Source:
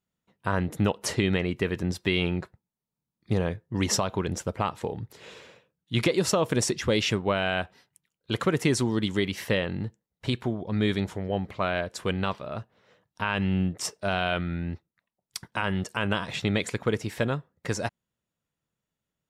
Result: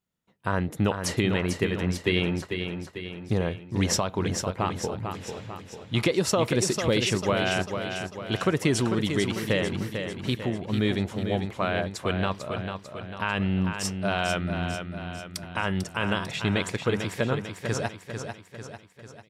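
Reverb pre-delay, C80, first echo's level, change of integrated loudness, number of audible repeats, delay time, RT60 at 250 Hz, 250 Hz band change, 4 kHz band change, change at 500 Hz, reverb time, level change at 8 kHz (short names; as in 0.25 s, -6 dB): none, none, -7.0 dB, +0.5 dB, 5, 0.446 s, none, +1.0 dB, +1.0 dB, +1.0 dB, none, +1.0 dB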